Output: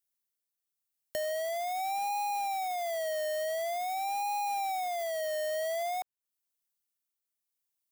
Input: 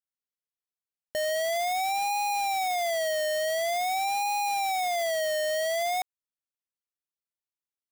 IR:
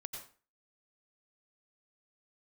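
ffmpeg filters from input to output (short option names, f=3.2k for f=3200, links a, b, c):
-filter_complex "[0:a]tremolo=f=0.9:d=0.36,crystalizer=i=2:c=0,acrossover=split=550|1300|3900[a][b][c][d];[a]acompressor=threshold=-47dB:ratio=4[e];[b]acompressor=threshold=-33dB:ratio=4[f];[c]acompressor=threshold=-49dB:ratio=4[g];[d]acompressor=threshold=-44dB:ratio=4[h];[e][f][g][h]amix=inputs=4:normalize=0"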